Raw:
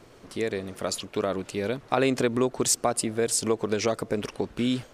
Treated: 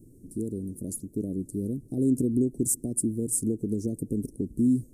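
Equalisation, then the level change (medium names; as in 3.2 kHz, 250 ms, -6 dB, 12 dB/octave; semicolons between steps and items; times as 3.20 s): elliptic band-stop 300–9300 Hz, stop band 60 dB; +4.0 dB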